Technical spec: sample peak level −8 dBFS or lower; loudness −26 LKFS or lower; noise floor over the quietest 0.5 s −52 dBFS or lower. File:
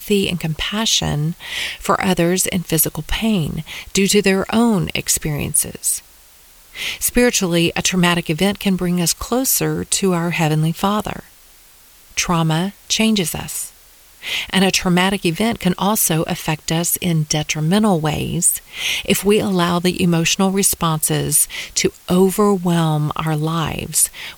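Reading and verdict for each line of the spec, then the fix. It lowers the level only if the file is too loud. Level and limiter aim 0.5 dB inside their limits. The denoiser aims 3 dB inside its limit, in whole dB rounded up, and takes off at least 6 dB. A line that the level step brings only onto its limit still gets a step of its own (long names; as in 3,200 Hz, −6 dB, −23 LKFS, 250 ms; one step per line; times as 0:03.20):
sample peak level −3.5 dBFS: out of spec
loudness −17.5 LKFS: out of spec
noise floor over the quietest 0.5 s −47 dBFS: out of spec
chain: level −9 dB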